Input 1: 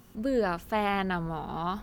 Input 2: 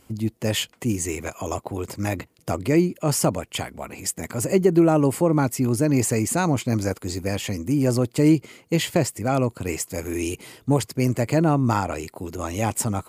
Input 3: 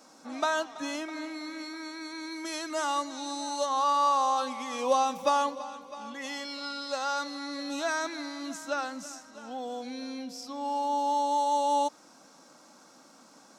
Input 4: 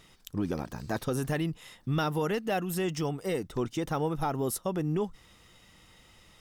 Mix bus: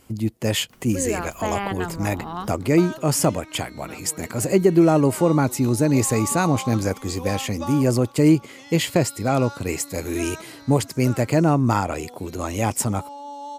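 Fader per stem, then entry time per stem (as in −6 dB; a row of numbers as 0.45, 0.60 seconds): +0.5, +1.5, −7.5, −14.5 decibels; 0.70, 0.00, 2.35, 1.90 seconds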